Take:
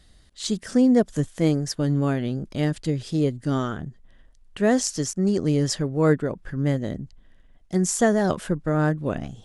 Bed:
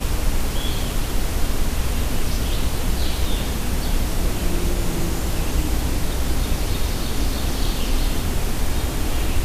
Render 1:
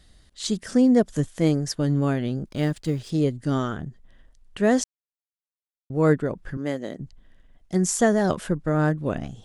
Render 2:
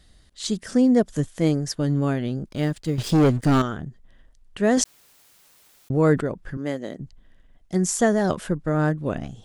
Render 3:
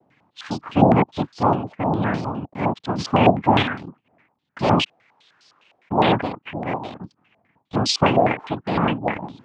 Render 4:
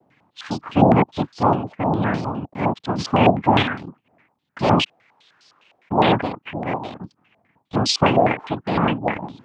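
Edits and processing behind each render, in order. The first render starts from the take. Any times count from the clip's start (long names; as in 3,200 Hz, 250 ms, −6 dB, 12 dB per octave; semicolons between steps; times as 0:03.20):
0:02.46–0:03.10: mu-law and A-law mismatch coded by A; 0:04.84–0:05.90: silence; 0:06.57–0:07.00: high-pass filter 300 Hz
0:02.98–0:03.62: leveller curve on the samples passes 3; 0:04.77–0:06.21: envelope flattener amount 50%
cochlear-implant simulation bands 4; low-pass on a step sequencer 9.8 Hz 690–4,800 Hz
level +1 dB; brickwall limiter −3 dBFS, peak gain reduction 2 dB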